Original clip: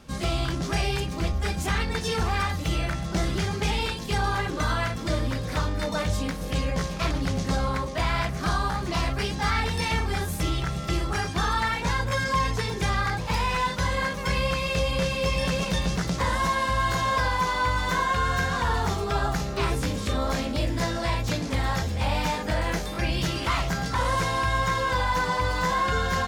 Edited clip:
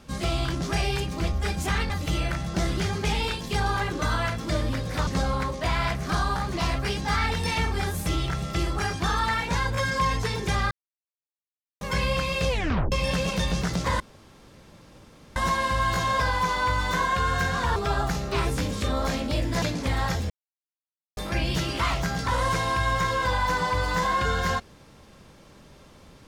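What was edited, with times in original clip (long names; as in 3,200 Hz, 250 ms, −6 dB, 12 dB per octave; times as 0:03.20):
0:01.90–0:02.48: remove
0:05.65–0:07.41: remove
0:13.05–0:14.15: silence
0:14.83: tape stop 0.43 s
0:16.34: splice in room tone 1.36 s
0:18.74–0:19.01: remove
0:20.87–0:21.29: remove
0:21.97–0:22.84: silence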